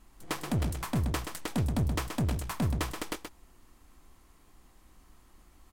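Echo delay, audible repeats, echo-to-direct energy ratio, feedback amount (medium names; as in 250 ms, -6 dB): 127 ms, 1, -7.0 dB, no regular repeats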